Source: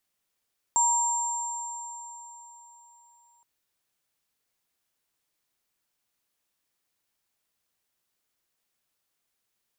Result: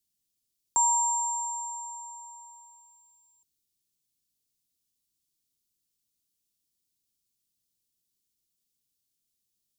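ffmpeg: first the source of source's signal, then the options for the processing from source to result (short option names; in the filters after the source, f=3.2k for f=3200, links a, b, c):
-f lavfi -i "aevalsrc='0.075*pow(10,-3*t/3.97)*sin(2*PI*944*t)+0.0944*pow(10,-3*t/3.62)*sin(2*PI*7390*t)':d=2.67:s=44100"
-filter_complex "[0:a]acrossover=split=120|370|3300[a][b][c][d];[a]acrusher=samples=27:mix=1:aa=0.000001:lfo=1:lforange=27:lforate=0.22[e];[c]agate=range=-33dB:threshold=-52dB:ratio=3:detection=peak[f];[e][b][f][d]amix=inputs=4:normalize=0"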